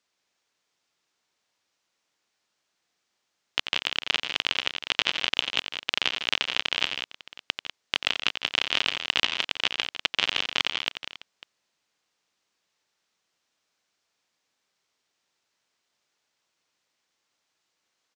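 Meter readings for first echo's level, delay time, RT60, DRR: -9.0 dB, 89 ms, no reverb, no reverb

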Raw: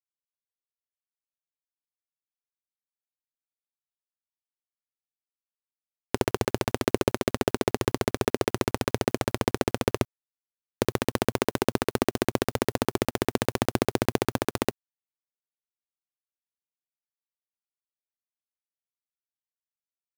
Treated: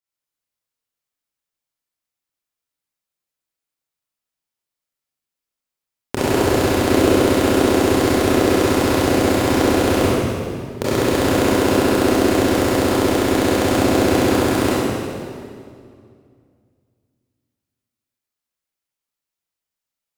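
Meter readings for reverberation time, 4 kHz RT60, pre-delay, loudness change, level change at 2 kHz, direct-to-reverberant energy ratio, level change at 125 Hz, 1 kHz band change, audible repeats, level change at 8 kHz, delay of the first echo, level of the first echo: 2.3 s, 1.8 s, 24 ms, +10.5 dB, +10.0 dB, -10.0 dB, +9.5 dB, +10.0 dB, no echo, +10.0 dB, no echo, no echo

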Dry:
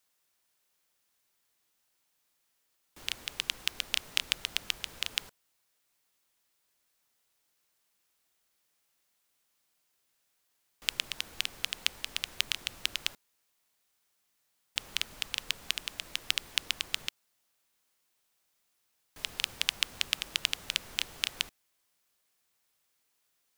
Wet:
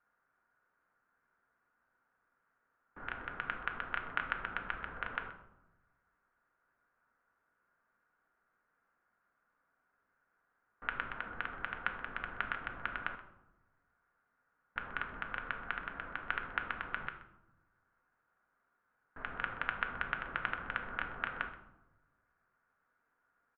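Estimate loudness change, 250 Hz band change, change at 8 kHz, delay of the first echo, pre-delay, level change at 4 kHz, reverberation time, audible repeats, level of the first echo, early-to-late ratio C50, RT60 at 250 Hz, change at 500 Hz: -6.5 dB, +3.5 dB, under -40 dB, 127 ms, 4 ms, -21.0 dB, 0.95 s, 1, -18.0 dB, 9.5 dB, 1.4 s, +3.5 dB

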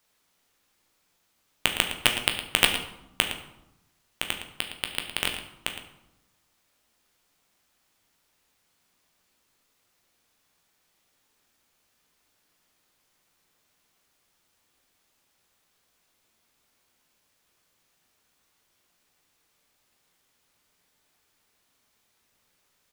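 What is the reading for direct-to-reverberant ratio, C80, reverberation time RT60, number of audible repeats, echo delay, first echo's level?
3.0 dB, 8.5 dB, 0.90 s, 1, 112 ms, -12.0 dB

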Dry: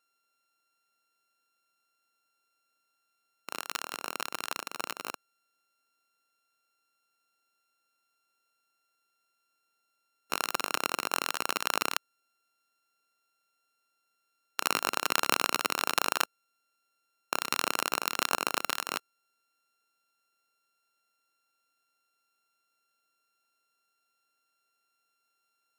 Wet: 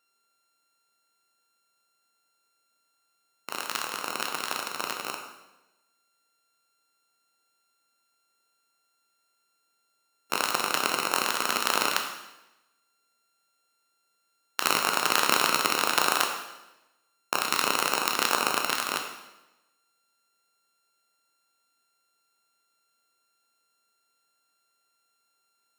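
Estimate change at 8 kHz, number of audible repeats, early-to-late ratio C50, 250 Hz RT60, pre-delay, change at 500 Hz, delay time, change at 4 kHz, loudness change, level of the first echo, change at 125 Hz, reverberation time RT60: +5.0 dB, no echo, 6.0 dB, 1.0 s, 10 ms, +5.0 dB, no echo, +5.0 dB, +4.5 dB, no echo, +5.0 dB, 1.0 s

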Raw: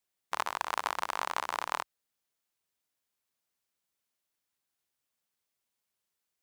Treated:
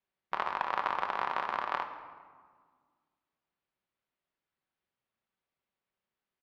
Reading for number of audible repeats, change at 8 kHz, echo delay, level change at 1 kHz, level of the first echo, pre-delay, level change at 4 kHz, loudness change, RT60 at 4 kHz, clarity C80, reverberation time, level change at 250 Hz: 1, under -20 dB, 189 ms, +1.5 dB, -21.0 dB, 5 ms, -5.5 dB, +0.5 dB, 0.95 s, 10.0 dB, 1.7 s, +3.0 dB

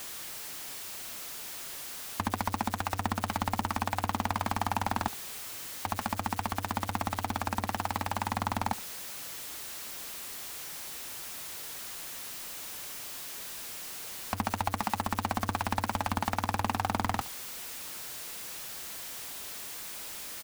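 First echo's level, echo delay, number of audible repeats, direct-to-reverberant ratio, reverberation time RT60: -19.5 dB, 70 ms, 1, no reverb, no reverb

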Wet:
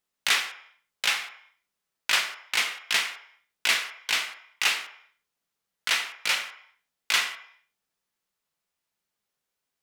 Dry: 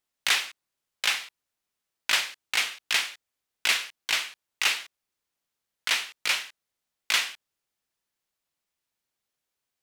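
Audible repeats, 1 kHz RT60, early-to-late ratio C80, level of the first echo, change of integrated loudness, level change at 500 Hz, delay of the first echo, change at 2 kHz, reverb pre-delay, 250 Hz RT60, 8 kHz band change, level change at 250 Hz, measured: no echo, 0.65 s, 13.0 dB, no echo, +0.5 dB, +1.5 dB, no echo, +1.0 dB, 3 ms, 0.40 s, 0.0 dB, +1.5 dB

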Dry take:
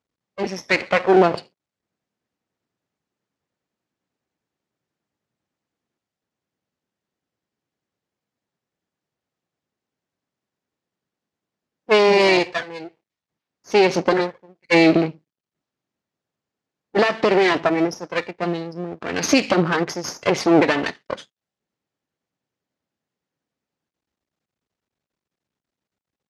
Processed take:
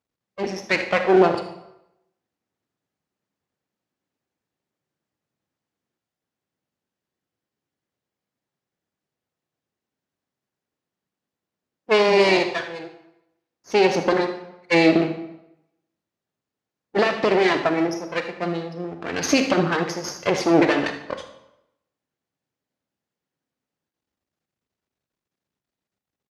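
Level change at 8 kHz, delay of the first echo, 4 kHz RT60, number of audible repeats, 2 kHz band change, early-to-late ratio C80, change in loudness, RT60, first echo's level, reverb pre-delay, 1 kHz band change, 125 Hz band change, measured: -2.0 dB, 77 ms, 0.70 s, 1, -2.0 dB, 12.0 dB, -1.5 dB, 0.90 s, -15.0 dB, 33 ms, -2.0 dB, -2.0 dB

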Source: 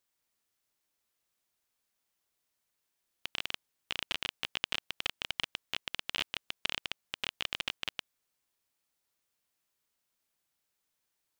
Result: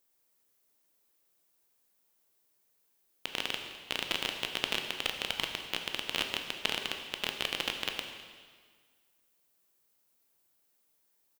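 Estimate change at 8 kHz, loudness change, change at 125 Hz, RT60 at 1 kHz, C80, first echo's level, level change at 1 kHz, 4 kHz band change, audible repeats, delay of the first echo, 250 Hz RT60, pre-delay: +5.5 dB, +3.0 dB, +4.0 dB, 1.7 s, 7.0 dB, -18.5 dB, +4.5 dB, +2.5 dB, 1, 207 ms, 1.7 s, 7 ms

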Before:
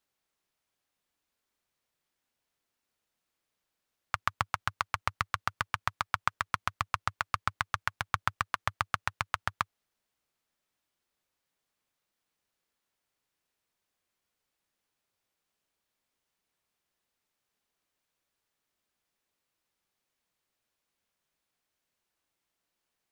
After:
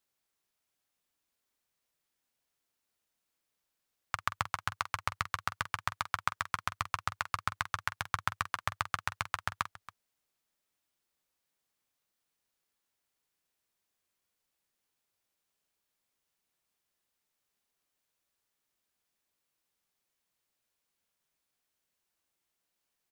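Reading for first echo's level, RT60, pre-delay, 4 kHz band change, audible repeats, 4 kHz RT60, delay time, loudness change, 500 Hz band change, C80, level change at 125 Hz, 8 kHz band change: -13.0 dB, no reverb, no reverb, -1.0 dB, 2, no reverb, 46 ms, -2.0 dB, -2.5 dB, no reverb, -2.5 dB, +1.0 dB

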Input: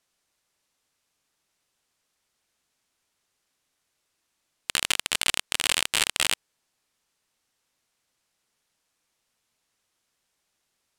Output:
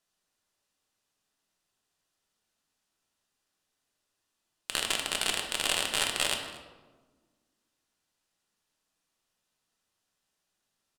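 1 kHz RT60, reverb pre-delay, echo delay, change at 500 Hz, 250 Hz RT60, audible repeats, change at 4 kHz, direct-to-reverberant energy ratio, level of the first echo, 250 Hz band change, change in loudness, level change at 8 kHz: 1.2 s, 3 ms, 232 ms, +2.0 dB, 2.1 s, 1, -4.0 dB, 2.5 dB, -19.0 dB, 0.0 dB, -4.0 dB, -5.0 dB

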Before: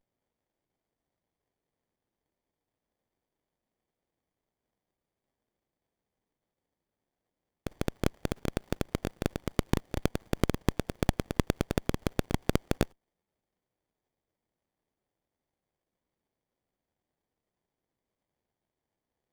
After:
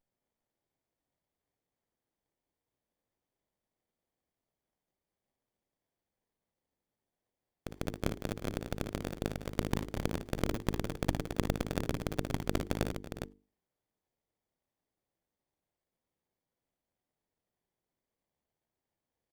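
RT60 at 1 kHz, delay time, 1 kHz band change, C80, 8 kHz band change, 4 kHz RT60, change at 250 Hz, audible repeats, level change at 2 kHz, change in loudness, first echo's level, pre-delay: no reverb, 57 ms, -3.0 dB, no reverb, -3.0 dB, no reverb, -4.0 dB, 4, -3.0 dB, -4.0 dB, -7.5 dB, no reverb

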